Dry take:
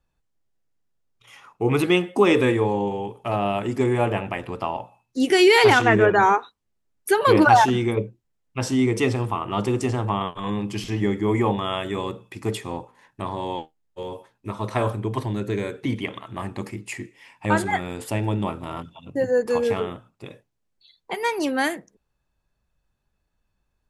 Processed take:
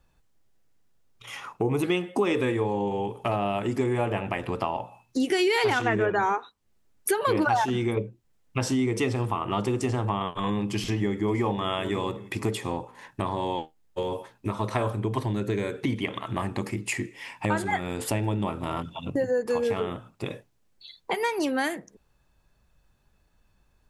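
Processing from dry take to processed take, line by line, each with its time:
1.62–1.83 s: time-frequency box 1.1–5.5 kHz -8 dB
10.64–11.59 s: echo throw 570 ms, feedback 25%, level -17.5 dB
whole clip: compression 3:1, threshold -36 dBFS; trim +8.5 dB

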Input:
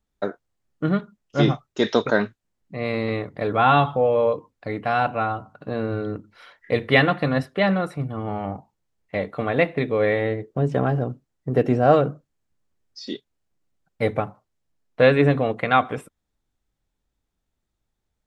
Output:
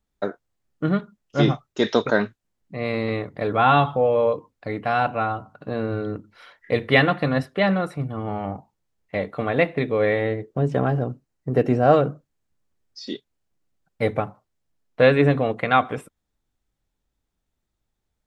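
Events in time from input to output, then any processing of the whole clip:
11.06–11.84 s: band-stop 3.4 kHz

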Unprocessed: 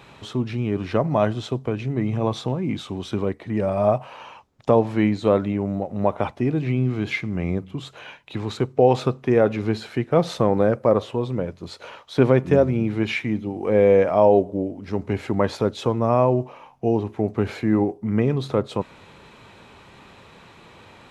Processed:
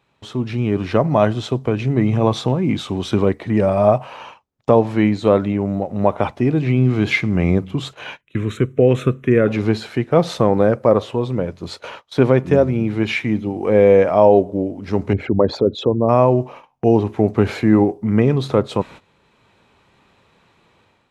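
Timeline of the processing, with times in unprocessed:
8.21–9.48 s: static phaser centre 2 kHz, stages 4
15.13–16.09 s: resonances exaggerated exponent 2
whole clip: gate -41 dBFS, range -18 dB; level rider gain up to 9 dB

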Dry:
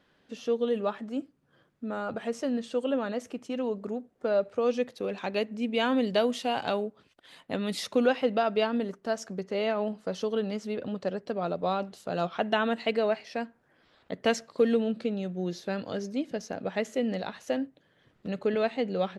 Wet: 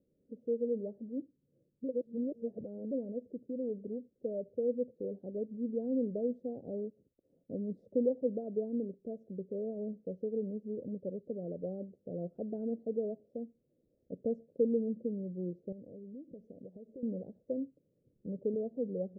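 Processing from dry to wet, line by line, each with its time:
1.84–2.91 s: reverse
15.72–17.03 s: compression, threshold -38 dBFS
whole clip: elliptic low-pass 530 Hz, stop band 50 dB; trim -5.5 dB

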